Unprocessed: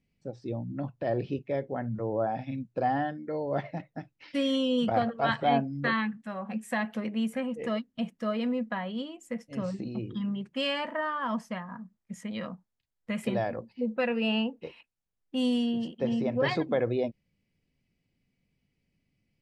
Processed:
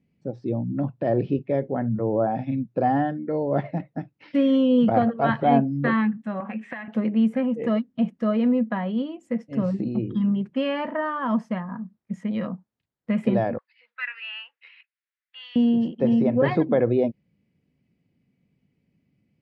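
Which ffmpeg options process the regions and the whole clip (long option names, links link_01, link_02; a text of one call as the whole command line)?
ffmpeg -i in.wav -filter_complex "[0:a]asettb=1/sr,asplit=3[link_01][link_02][link_03];[link_01]atrim=end=6.404[link_04];[link_02]atrim=start=6.4:end=6.88,asetpts=PTS-STARTPTS,afade=type=in:duration=0.004:curve=qsin,afade=type=out:start_time=0.476:duration=0.004:curve=qsin,highpass=230,lowpass=3500,equalizer=frequency=2200:width_type=o:width=1.7:gain=14,acompressor=threshold=-34dB:ratio=12:attack=3.2:release=140:knee=1:detection=peak[link_05];[link_03]atrim=start=6.876[link_06];[link_04][link_05]acrossfade=duration=0.004:curve1=hsin:curve2=qsin[link_07];[link_07][link_06]acrossfade=duration=0.004:curve1=qsin:curve2=hsin,asettb=1/sr,asplit=3[link_08][link_09][link_10];[link_08]atrim=end=13.584[link_11];[link_09]atrim=start=13.58:end=15.56,asetpts=PTS-STARTPTS,afade=type=in:duration=0.004:curve=qsin,afade=type=out:start_time=1.976:duration=0.004:curve=qsin,asuperpass=centerf=2600:order=8:qfactor=0.71,equalizer=frequency=2000:width=3.1:gain=7.5[link_12];[link_10]atrim=start=15.556[link_13];[link_11][link_12]acrossfade=duration=0.004:curve1=hsin:curve2=qsin[link_14];[link_14][link_13]acrossfade=duration=0.004:curve1=qsin:curve2=hsin,acrossover=split=3000[link_15][link_16];[link_16]acompressor=threshold=-49dB:ratio=4:attack=1:release=60[link_17];[link_15][link_17]amix=inputs=2:normalize=0,highpass=190,aemphasis=mode=reproduction:type=riaa,volume=4dB" out.wav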